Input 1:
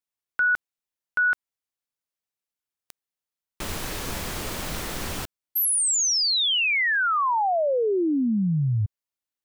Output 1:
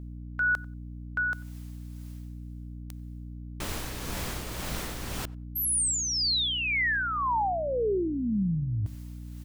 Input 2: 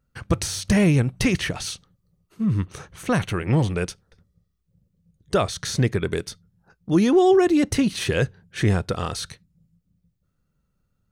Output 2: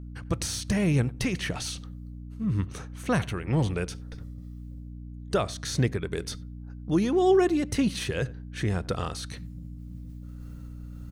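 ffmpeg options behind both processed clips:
-filter_complex "[0:a]areverse,acompressor=mode=upward:threshold=0.0794:ratio=2.5:attack=0.6:release=537:knee=2.83:detection=peak,areverse,tremolo=f=1.9:d=0.42,aeval=exprs='val(0)+0.0178*(sin(2*PI*60*n/s)+sin(2*PI*2*60*n/s)/2+sin(2*PI*3*60*n/s)/3+sin(2*PI*4*60*n/s)/4+sin(2*PI*5*60*n/s)/5)':c=same,asplit=2[s0][s1];[s1]adelay=93,lowpass=f=1800:p=1,volume=0.0891,asplit=2[s2][s3];[s3]adelay=93,lowpass=f=1800:p=1,volume=0.15[s4];[s0][s2][s4]amix=inputs=3:normalize=0,volume=0.668"

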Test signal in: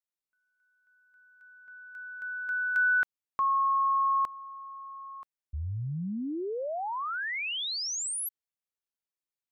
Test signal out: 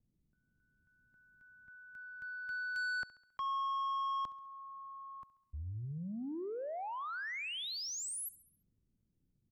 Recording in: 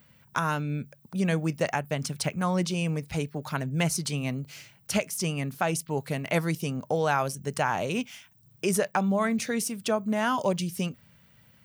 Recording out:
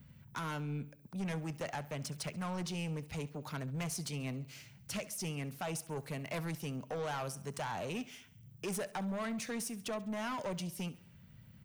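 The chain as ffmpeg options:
-filter_complex "[0:a]acrossover=split=230|950|4200[s0][s1][s2][s3];[s0]acompressor=mode=upward:threshold=0.0178:ratio=2.5:attack=0.17:release=353:knee=2.83:detection=peak[s4];[s4][s1][s2][s3]amix=inputs=4:normalize=0,asoftclip=type=tanh:threshold=0.0447,aecho=1:1:68|136|204|272|340:0.119|0.0642|0.0347|0.0187|0.0101,volume=0.447"

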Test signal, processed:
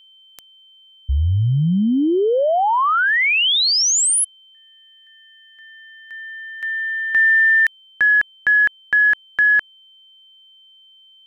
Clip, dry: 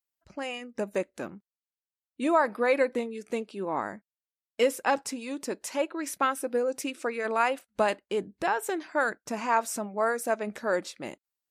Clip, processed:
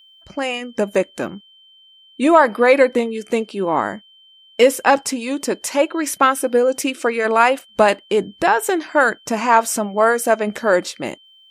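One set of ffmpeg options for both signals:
-af "aeval=exprs='val(0)+0.00112*sin(2*PI*3100*n/s)':c=same,acontrast=79,volume=1.78"

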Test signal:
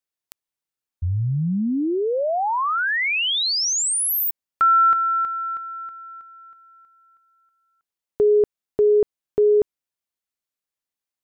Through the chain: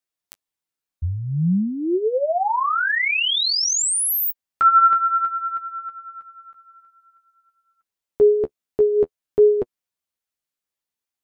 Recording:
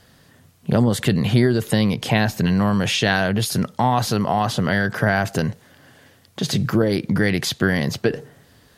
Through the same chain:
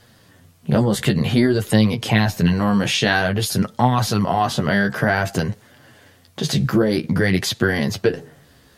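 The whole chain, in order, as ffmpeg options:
-af "flanger=delay=8.1:depth=7:regen=19:speed=0.52:shape=triangular,volume=1.68"

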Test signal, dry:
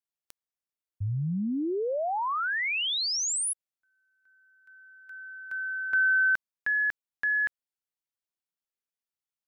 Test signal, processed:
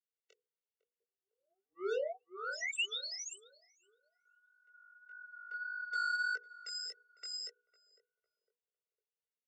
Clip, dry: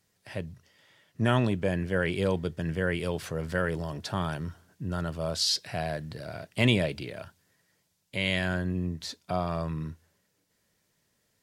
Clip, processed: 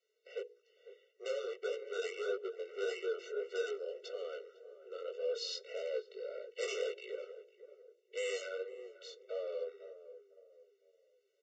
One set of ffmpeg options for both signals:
-filter_complex "[0:a]asplit=3[s0][s1][s2];[s0]bandpass=f=530:t=q:w=8,volume=1[s3];[s1]bandpass=f=1840:t=q:w=8,volume=0.501[s4];[s2]bandpass=f=2480:t=q:w=8,volume=0.355[s5];[s3][s4][s5]amix=inputs=3:normalize=0,aresample=16000,asoftclip=type=tanh:threshold=0.0106,aresample=44100,equalizer=f=890:w=6.5:g=-8,afreqshift=-73,aemphasis=mode=production:type=50fm,bandreject=f=60:t=h:w=6,bandreject=f=120:t=h:w=6,bandreject=f=180:t=h:w=6,bandreject=f=240:t=h:w=6,bandreject=f=300:t=h:w=6,bandreject=f=360:t=h:w=6,bandreject=f=420:t=h:w=6,bandreject=f=480:t=h:w=6,asplit=2[s6][s7];[s7]adelay=504,lowpass=f=810:p=1,volume=0.251,asplit=2[s8][s9];[s9]adelay=504,lowpass=f=810:p=1,volume=0.4,asplit=2[s10][s11];[s11]adelay=504,lowpass=f=810:p=1,volume=0.4,asplit=2[s12][s13];[s13]adelay=504,lowpass=f=810:p=1,volume=0.4[s14];[s6][s8][s10][s12][s14]amix=inputs=5:normalize=0,flanger=delay=16:depth=6.9:speed=1.7,afftfilt=real='re*eq(mod(floor(b*sr/1024/380),2),1)':imag='im*eq(mod(floor(b*sr/1024/380),2),1)':win_size=1024:overlap=0.75,volume=3.55"

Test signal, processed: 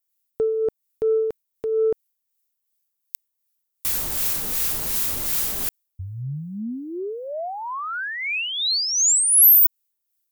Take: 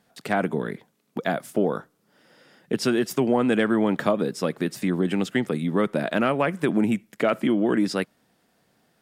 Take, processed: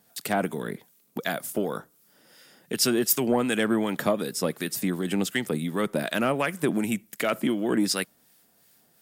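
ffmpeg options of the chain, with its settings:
-filter_complex "[0:a]acrossover=split=1200[s0][s1];[s0]aeval=exprs='val(0)*(1-0.5/2+0.5/2*cos(2*PI*2.7*n/s))':c=same[s2];[s1]aeval=exprs='val(0)*(1-0.5/2-0.5/2*cos(2*PI*2.7*n/s))':c=same[s3];[s2][s3]amix=inputs=2:normalize=0,acontrast=79,aemphasis=mode=production:type=75fm,volume=0.447"

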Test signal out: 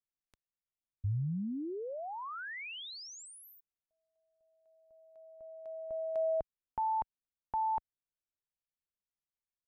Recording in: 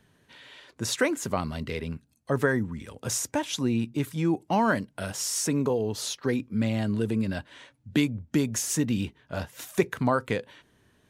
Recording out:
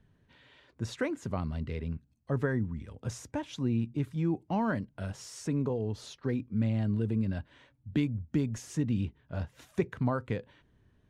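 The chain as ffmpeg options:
-af "aemphasis=mode=reproduction:type=bsi,volume=0.355"

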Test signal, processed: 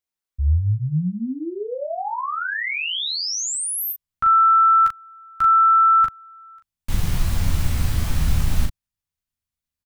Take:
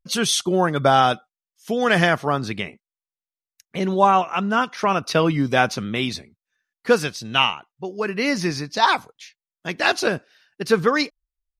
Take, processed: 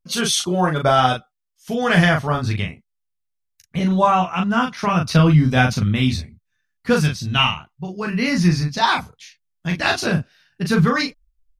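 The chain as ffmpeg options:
-af "asubboost=boost=10:cutoff=130,aecho=1:1:12|39:0.501|0.631,volume=0.891"

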